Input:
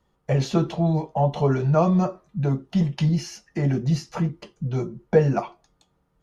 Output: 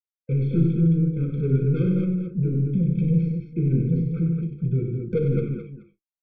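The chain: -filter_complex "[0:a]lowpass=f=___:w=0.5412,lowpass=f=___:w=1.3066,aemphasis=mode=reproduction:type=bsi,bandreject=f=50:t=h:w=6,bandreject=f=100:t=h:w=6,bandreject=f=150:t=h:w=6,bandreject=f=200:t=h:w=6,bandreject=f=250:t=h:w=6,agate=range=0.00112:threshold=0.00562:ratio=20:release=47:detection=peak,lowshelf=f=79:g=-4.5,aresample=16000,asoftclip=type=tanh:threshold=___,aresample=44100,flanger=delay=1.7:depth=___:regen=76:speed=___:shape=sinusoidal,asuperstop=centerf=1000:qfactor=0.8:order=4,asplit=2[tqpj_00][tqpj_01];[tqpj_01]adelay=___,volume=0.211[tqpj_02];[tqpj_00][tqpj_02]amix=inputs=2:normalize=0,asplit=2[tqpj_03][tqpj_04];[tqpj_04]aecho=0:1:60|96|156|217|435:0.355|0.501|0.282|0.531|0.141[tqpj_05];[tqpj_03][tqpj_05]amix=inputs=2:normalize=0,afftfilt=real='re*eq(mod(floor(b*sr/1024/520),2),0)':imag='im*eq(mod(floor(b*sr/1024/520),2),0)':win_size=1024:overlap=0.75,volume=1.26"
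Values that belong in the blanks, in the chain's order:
2500, 2500, 0.2, 4.7, 0.99, 35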